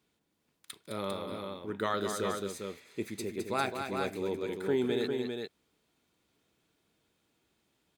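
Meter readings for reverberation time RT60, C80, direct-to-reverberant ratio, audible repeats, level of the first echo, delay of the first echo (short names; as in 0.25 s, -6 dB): none, none, none, 2, -7.0 dB, 0.211 s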